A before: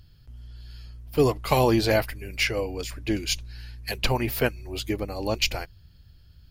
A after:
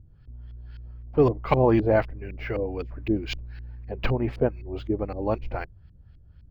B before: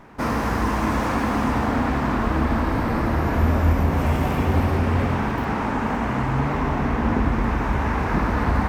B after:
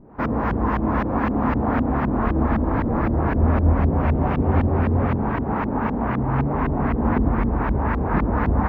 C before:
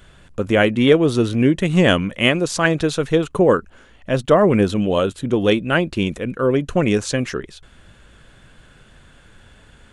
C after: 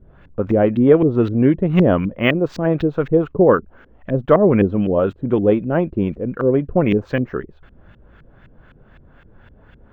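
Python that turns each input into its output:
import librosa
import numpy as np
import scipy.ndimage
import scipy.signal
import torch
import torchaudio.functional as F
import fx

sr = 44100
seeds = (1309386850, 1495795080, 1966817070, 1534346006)

y = fx.filter_lfo_lowpass(x, sr, shape='saw_up', hz=3.9, low_hz=300.0, high_hz=2600.0, q=1.0)
y = np.interp(np.arange(len(y)), np.arange(len(y))[::2], y[::2])
y = y * 10.0 ** (1.0 / 20.0)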